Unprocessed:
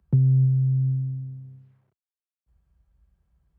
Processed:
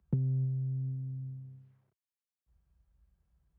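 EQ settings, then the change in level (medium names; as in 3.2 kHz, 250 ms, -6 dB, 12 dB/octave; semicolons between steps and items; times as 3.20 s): dynamic bell 130 Hz, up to -7 dB, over -31 dBFS; -5.5 dB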